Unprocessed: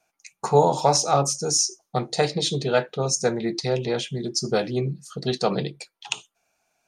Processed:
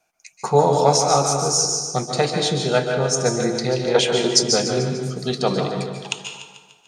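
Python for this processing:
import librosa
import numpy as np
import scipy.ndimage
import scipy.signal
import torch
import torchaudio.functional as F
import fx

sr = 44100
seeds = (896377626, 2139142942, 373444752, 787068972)

y = fx.graphic_eq(x, sr, hz=(125, 500, 1000, 2000, 4000, 8000), db=(-5, 11, 11, 8, 5, 9), at=(3.94, 4.42), fade=0.02)
y = fx.echo_feedback(y, sr, ms=147, feedback_pct=54, wet_db=-11)
y = fx.rev_plate(y, sr, seeds[0], rt60_s=1.1, hf_ratio=0.6, predelay_ms=120, drr_db=4.0)
y = y * librosa.db_to_amplitude(1.5)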